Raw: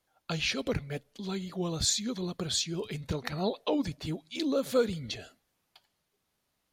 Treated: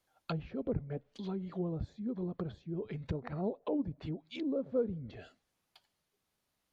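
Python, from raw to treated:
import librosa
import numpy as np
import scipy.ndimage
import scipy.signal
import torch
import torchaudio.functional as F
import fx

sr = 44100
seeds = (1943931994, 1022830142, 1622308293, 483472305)

p1 = fx.env_lowpass_down(x, sr, base_hz=580.0, full_db=-29.5)
p2 = fx.rider(p1, sr, range_db=10, speed_s=2.0)
p3 = p1 + (p2 * librosa.db_to_amplitude(-2.0))
y = p3 * librosa.db_to_amplitude(-8.5)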